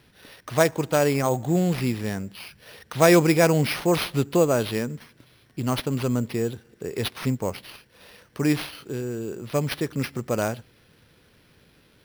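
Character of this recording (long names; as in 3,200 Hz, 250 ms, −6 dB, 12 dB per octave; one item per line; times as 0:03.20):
aliases and images of a low sample rate 7,400 Hz, jitter 0%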